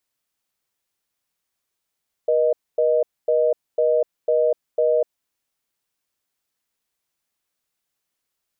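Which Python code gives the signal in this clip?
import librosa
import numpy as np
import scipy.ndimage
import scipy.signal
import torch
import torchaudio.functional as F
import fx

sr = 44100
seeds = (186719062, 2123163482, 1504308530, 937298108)

y = fx.call_progress(sr, length_s=2.86, kind='reorder tone', level_db=-18.0)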